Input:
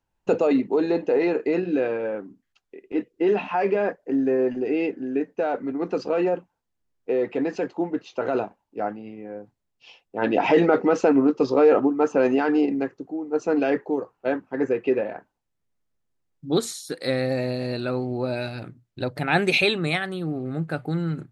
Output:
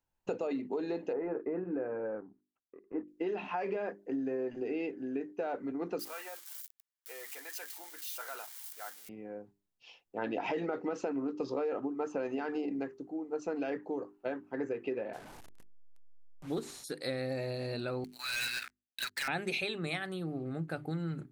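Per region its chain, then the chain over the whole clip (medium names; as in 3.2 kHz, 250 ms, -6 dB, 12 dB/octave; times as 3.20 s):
1.13–3.08 s: companding laws mixed up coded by A + low-pass 1.6 kHz 24 dB/octave
5.99–9.09 s: zero-crossing glitches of -29 dBFS + Chebyshev high-pass 1.5 kHz + band-stop 2.6 kHz
15.13–16.84 s: one-bit delta coder 64 kbps, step -35.5 dBFS + peaking EQ 8.8 kHz -8.5 dB 2.8 oct
18.04–19.28 s: elliptic band-pass 1.6–8.5 kHz, stop band 50 dB + waveshaping leveller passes 5
whole clip: treble shelf 8.4 kHz +6.5 dB; hum notches 50/100/150/200/250/300/350/400 Hz; compression, threshold -24 dBFS; trim -7.5 dB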